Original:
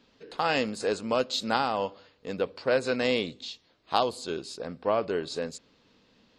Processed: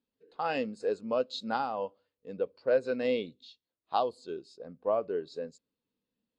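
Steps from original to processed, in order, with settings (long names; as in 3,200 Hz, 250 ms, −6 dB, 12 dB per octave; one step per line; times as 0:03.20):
every bin expanded away from the loudest bin 1.5 to 1
level −6 dB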